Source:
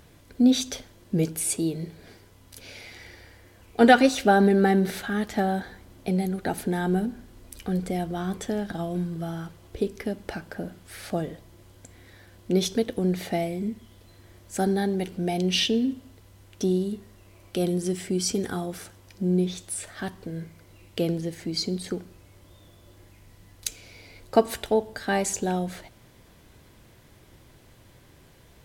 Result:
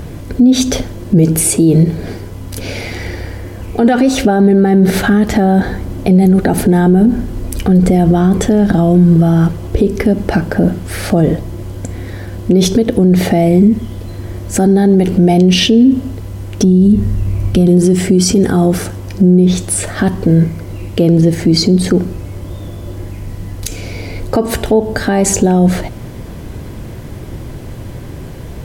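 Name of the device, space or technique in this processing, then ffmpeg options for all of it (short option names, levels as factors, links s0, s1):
mastering chain: -filter_complex "[0:a]asplit=3[s0][s1][s2];[s0]afade=t=out:st=16.63:d=0.02[s3];[s1]asubboost=boost=3.5:cutoff=210,afade=t=in:st=16.63:d=0.02,afade=t=out:st=17.66:d=0.02[s4];[s2]afade=t=in:st=17.66:d=0.02[s5];[s3][s4][s5]amix=inputs=3:normalize=0,equalizer=f=3700:t=o:w=0.31:g=-2.5,acompressor=threshold=0.0501:ratio=2.5,tiltshelf=f=680:g=6,alimiter=level_in=15:limit=0.891:release=50:level=0:latency=1,volume=0.891"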